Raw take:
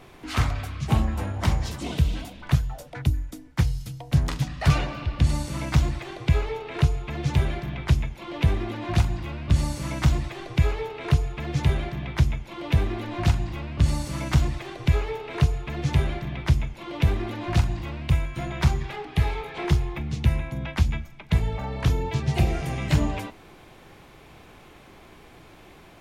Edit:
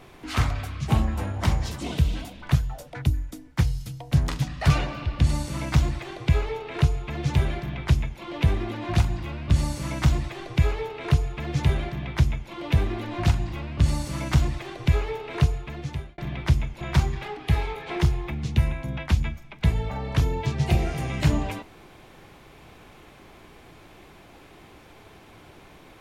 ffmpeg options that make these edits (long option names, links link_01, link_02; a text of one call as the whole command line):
ffmpeg -i in.wav -filter_complex "[0:a]asplit=3[link_01][link_02][link_03];[link_01]atrim=end=16.18,asetpts=PTS-STARTPTS,afade=type=out:start_time=15.45:duration=0.73[link_04];[link_02]atrim=start=16.18:end=16.812,asetpts=PTS-STARTPTS,afade=type=in:duration=0.004:curve=hsin[link_05];[link_03]atrim=start=18.488[link_06];[link_04][link_05]concat=n=2:v=0:a=1[link_07];[link_07][link_06]acrossfade=duration=0.004:curve1=hsin:curve2=hsin" out.wav